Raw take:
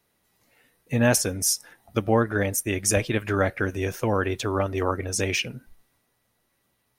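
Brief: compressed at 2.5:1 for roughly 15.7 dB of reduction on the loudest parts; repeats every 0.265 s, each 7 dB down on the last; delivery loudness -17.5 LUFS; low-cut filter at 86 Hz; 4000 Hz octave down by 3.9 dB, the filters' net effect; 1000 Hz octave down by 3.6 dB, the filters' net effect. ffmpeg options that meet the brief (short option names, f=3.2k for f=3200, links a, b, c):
-af "highpass=86,equalizer=f=1k:t=o:g=-4.5,equalizer=f=4k:t=o:g=-6,acompressor=threshold=-41dB:ratio=2.5,aecho=1:1:265|530|795|1060|1325:0.447|0.201|0.0905|0.0407|0.0183,volume=20.5dB"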